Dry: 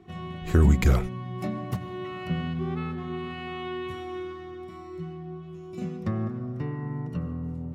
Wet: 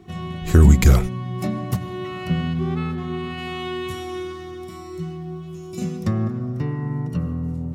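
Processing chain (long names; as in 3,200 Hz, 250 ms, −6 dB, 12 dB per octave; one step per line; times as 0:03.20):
bass and treble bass +3 dB, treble +8 dB, from 0:03.37 treble +15 dB, from 0:06.12 treble +9 dB
level +4.5 dB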